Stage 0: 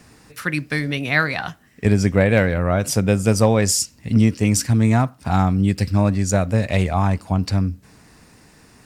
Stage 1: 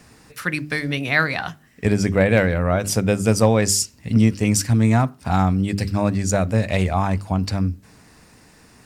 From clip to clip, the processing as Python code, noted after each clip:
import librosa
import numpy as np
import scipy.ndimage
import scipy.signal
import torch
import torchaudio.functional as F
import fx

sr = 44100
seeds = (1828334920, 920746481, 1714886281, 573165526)

y = fx.hum_notches(x, sr, base_hz=50, count=8)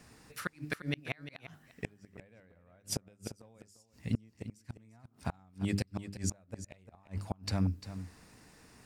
y = fx.gate_flip(x, sr, shuts_db=-10.0, range_db=-35)
y = y + 10.0 ** (-12.5 / 20.0) * np.pad(y, (int(348 * sr / 1000.0), 0))[:len(y)]
y = y * librosa.db_to_amplitude(-8.5)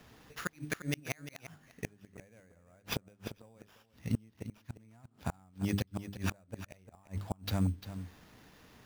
y = fx.sample_hold(x, sr, seeds[0], rate_hz=8400.0, jitter_pct=0)